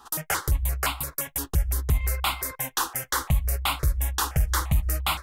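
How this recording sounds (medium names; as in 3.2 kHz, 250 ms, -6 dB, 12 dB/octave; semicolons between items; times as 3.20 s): notches that jump at a steady rate 5.8 Hz 590–1700 Hz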